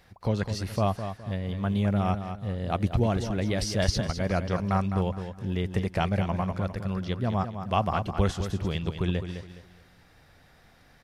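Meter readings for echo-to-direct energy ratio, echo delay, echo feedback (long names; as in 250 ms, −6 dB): −8.5 dB, 208 ms, 31%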